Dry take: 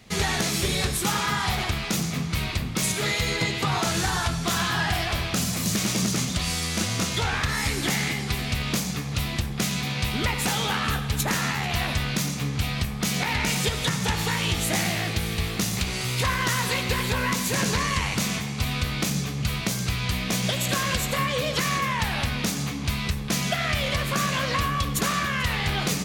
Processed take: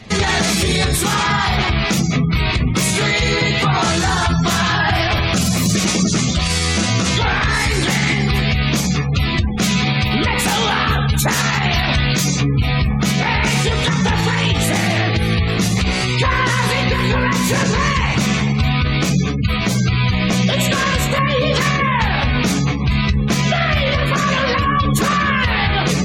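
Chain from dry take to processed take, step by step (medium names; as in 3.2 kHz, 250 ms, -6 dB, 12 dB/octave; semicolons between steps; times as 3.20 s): spectral gate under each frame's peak -25 dB strong; treble shelf 3.9 kHz -3.5 dB, from 10.98 s +3 dB, from 12.41 s -7.5 dB; flange 0.2 Hz, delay 9.1 ms, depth 8 ms, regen -30%; loudness maximiser +23.5 dB; trim -6.5 dB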